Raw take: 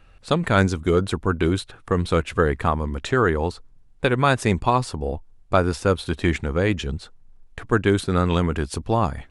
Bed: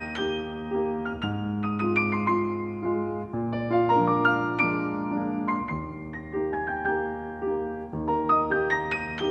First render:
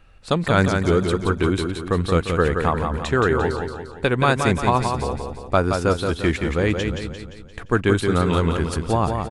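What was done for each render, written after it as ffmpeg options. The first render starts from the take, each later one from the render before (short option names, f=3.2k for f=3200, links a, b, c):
-af "aecho=1:1:174|348|522|696|870|1044:0.531|0.26|0.127|0.0625|0.0306|0.015"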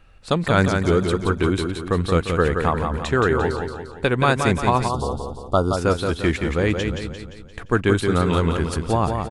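-filter_complex "[0:a]asplit=3[a][b][c];[a]afade=t=out:st=4.88:d=0.02[d];[b]asuperstop=centerf=2000:order=12:qfactor=1.3,afade=t=in:st=4.88:d=0.02,afade=t=out:st=5.76:d=0.02[e];[c]afade=t=in:st=5.76:d=0.02[f];[d][e][f]amix=inputs=3:normalize=0"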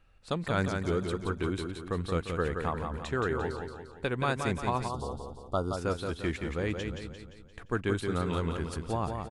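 -af "volume=-11.5dB"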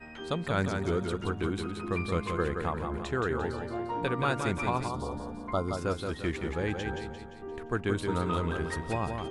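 -filter_complex "[1:a]volume=-13dB[a];[0:a][a]amix=inputs=2:normalize=0"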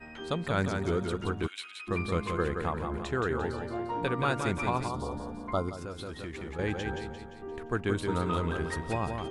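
-filter_complex "[0:a]asplit=3[a][b][c];[a]afade=t=out:st=1.46:d=0.02[d];[b]highpass=f=2.5k:t=q:w=2.3,afade=t=in:st=1.46:d=0.02,afade=t=out:st=1.87:d=0.02[e];[c]afade=t=in:st=1.87:d=0.02[f];[d][e][f]amix=inputs=3:normalize=0,asettb=1/sr,asplit=3[g][h][i];[g]atrim=end=5.694[j];[h]atrim=start=5.69:end=6.59,asetpts=PTS-STARTPTS,afade=t=in:d=0.004:c=qsin,afade=t=out:st=0.896:d=0.004:c=qsin,acompressor=threshold=-35dB:ratio=6:attack=3.2:release=140:knee=1:detection=peak[k];[i]atrim=start=6.586[l];[j][k]acrossfade=d=0.004:c1=hsin:c2=qsin[m];[m][l]acrossfade=d=0.004:c1=qsin:c2=hsin"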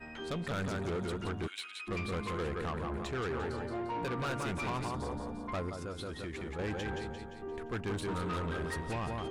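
-af "asoftclip=type=tanh:threshold=-31.5dB"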